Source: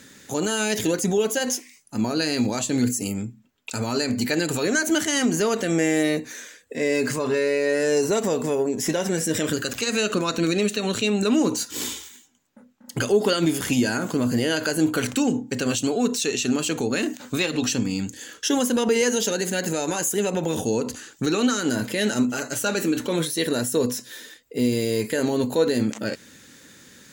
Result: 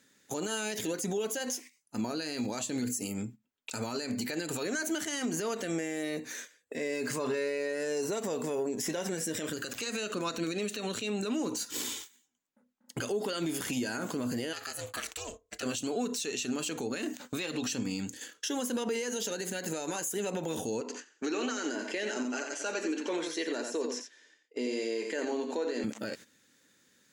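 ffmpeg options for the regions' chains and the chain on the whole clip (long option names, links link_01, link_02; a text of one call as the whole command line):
ffmpeg -i in.wav -filter_complex "[0:a]asettb=1/sr,asplit=3[link_01][link_02][link_03];[link_01]atrim=end=14.534[link_04];[link_02]atrim=start=14.53:end=15.63,asetpts=PTS-STARTPTS,afade=type=in:duration=0.004:curve=qsin,afade=type=out:start_time=1.096:duration=0.004:curve=qsin,highpass=frequency=1500:poles=1,aeval=exprs='val(0)*sin(2*PI*200*n/s)':channel_layout=same[link_05];[link_03]atrim=start=15.626[link_06];[link_04][link_05]acrossfade=duration=0.004:curve1=hsin:curve2=qsin[link_07];[link_07][link_06]acrossfade=duration=0.004:curve1=qsin:curve2=hsin,asettb=1/sr,asplit=3[link_08][link_09][link_10];[link_08]atrim=end=20.814[link_11];[link_09]atrim=start=20.81:end=25.84,asetpts=PTS-STARTPTS,afade=type=in:duration=0.004:curve=qsin,afade=type=out:start_time=5.026:duration=0.004:curve=qsin,highpass=frequency=290:width=0.5412,highpass=frequency=290:width=1.3066,equalizer=frequency=510:width_type=q:width=4:gain=-4,equalizer=frequency=1300:width_type=q:width=4:gain=-4,equalizer=frequency=3800:width_type=q:width=4:gain=-9,lowpass=frequency=6500:width=0.5412,lowpass=frequency=6500:width=1.3066,aecho=1:1:88:0.447,atrim=end_sample=221823[link_12];[link_10]atrim=start=25.836[link_13];[link_11][link_12]acrossfade=duration=0.004:curve1=hsin:curve2=qsin[link_14];[link_14][link_13]acrossfade=duration=0.004:curve1=qsin:curve2=hsin,agate=range=-14dB:threshold=-38dB:ratio=16:detection=peak,lowshelf=frequency=130:gain=-10,alimiter=limit=-21dB:level=0:latency=1:release=146,volume=-3dB" out.wav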